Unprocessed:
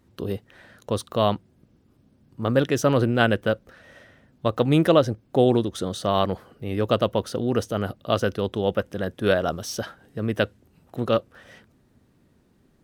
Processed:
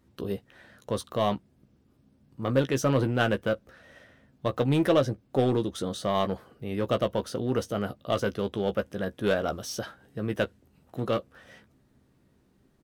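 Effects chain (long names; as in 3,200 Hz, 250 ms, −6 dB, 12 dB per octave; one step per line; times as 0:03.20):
in parallel at −10 dB: wave folding −16.5 dBFS
on the sum: double-tracking delay 15 ms −8.5 dB
level −6.5 dB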